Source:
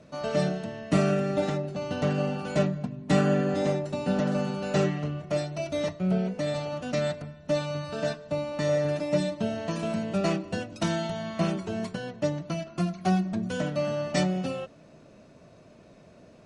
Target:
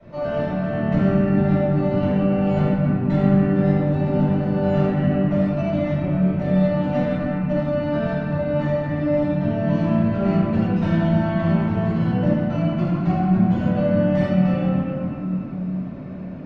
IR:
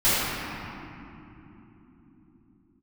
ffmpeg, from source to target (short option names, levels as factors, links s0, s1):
-filter_complex "[0:a]lowpass=2400,acrossover=split=130[s0][s1];[s1]acompressor=threshold=0.0178:ratio=6[s2];[s0][s2]amix=inputs=2:normalize=0[s3];[1:a]atrim=start_sample=2205[s4];[s3][s4]afir=irnorm=-1:irlink=0,volume=0.501"